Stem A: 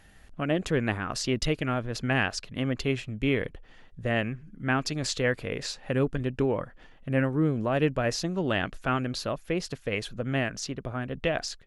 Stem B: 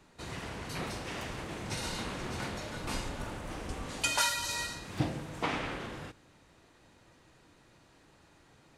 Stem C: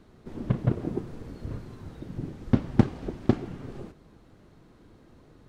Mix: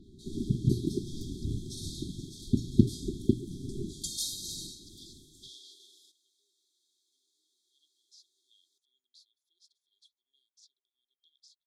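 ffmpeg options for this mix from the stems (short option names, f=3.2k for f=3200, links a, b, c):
-filter_complex "[0:a]highpass=f=1.3k:w=0.5412,highpass=f=1.3k:w=1.3066,aemphasis=mode=reproduction:type=50kf,volume=-18.5dB,asplit=2[a][b];[1:a]highpass=f=640:w=0.5412,highpass=f=640:w=1.3066,adynamicequalizer=threshold=0.00398:dfrequency=2200:dqfactor=0.7:tfrequency=2200:tqfactor=0.7:attack=5:release=100:ratio=0.375:range=2:mode=boostabove:tftype=highshelf,volume=-6dB[c];[2:a]lowpass=4.3k,bandreject=f=60:t=h:w=6,bandreject=f=120:t=h:w=6,dynaudnorm=f=150:g=13:m=12.5dB,volume=2dB[d];[b]apad=whole_len=242093[e];[d][e]sidechaincompress=threshold=-57dB:ratio=8:attack=42:release=912[f];[a][c][f]amix=inputs=3:normalize=0,afftfilt=real='re*(1-between(b*sr/4096,410,3200))':imag='im*(1-between(b*sr/4096,410,3200))':win_size=4096:overlap=0.75"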